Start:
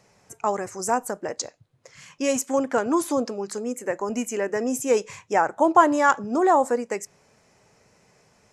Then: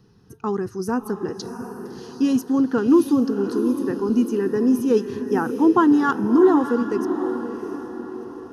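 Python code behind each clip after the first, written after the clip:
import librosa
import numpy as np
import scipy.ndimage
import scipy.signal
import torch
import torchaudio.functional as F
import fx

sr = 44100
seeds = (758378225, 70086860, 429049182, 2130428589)

y = fx.low_shelf_res(x, sr, hz=600.0, db=10.0, q=1.5)
y = fx.fixed_phaser(y, sr, hz=2200.0, stages=6)
y = fx.echo_diffused(y, sr, ms=687, feedback_pct=46, wet_db=-8.5)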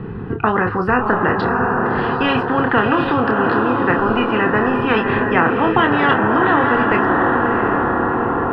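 y = scipy.signal.sosfilt(scipy.signal.cheby2(4, 50, 5800.0, 'lowpass', fs=sr, output='sos'), x)
y = fx.doubler(y, sr, ms=28.0, db=-7.0)
y = fx.spectral_comp(y, sr, ratio=4.0)
y = F.gain(torch.from_numpy(y), 2.5).numpy()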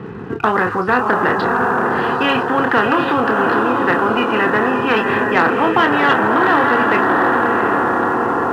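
y = fx.leveller(x, sr, passes=1)
y = fx.highpass(y, sr, hz=280.0, slope=6)
y = F.gain(torch.from_numpy(y), -1.0).numpy()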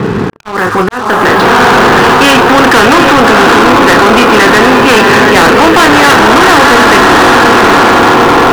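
y = fx.auto_swell(x, sr, attack_ms=761.0)
y = fx.leveller(y, sr, passes=5)
y = F.gain(torch.from_numpy(y), 1.0).numpy()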